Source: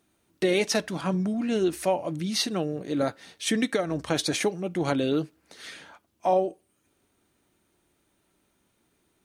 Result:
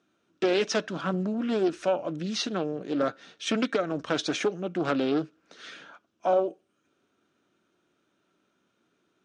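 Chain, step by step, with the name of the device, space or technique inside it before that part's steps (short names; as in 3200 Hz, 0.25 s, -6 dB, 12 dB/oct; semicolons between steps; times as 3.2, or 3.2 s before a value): full-range speaker at full volume (Doppler distortion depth 0.44 ms; speaker cabinet 170–6000 Hz, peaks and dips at 870 Hz -6 dB, 1400 Hz +6 dB, 2000 Hz -6 dB, 4500 Hz -6 dB)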